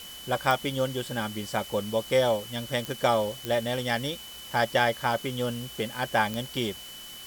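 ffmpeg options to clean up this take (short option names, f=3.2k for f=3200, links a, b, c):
-af "adeclick=t=4,bandreject=f=3k:w=30,afftdn=nr=29:nf=-43"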